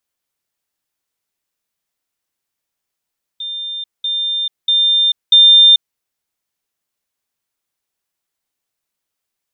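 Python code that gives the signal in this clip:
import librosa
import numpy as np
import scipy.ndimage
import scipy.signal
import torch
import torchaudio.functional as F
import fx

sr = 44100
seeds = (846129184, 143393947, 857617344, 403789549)

y = fx.level_ladder(sr, hz=3600.0, from_db=-22.0, step_db=6.0, steps=4, dwell_s=0.44, gap_s=0.2)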